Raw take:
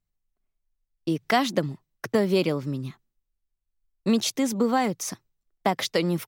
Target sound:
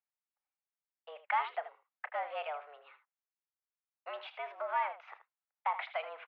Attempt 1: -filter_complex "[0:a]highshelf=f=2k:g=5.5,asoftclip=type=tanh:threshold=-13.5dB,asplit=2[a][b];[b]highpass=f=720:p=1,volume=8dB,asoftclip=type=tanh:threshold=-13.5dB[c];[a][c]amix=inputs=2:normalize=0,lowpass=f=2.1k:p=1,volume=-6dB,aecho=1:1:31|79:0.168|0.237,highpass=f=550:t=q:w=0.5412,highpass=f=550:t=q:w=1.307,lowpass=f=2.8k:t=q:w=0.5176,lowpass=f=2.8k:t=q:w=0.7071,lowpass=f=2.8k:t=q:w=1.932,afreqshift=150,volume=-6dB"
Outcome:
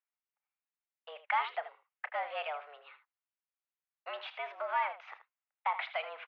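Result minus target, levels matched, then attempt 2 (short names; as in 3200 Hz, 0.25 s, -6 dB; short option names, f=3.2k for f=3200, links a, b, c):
4000 Hz band +3.5 dB
-filter_complex "[0:a]highshelf=f=2k:g=-3,asoftclip=type=tanh:threshold=-13.5dB,asplit=2[a][b];[b]highpass=f=720:p=1,volume=8dB,asoftclip=type=tanh:threshold=-13.5dB[c];[a][c]amix=inputs=2:normalize=0,lowpass=f=2.1k:p=1,volume=-6dB,aecho=1:1:31|79:0.168|0.237,highpass=f=550:t=q:w=0.5412,highpass=f=550:t=q:w=1.307,lowpass=f=2.8k:t=q:w=0.5176,lowpass=f=2.8k:t=q:w=0.7071,lowpass=f=2.8k:t=q:w=1.932,afreqshift=150,volume=-6dB"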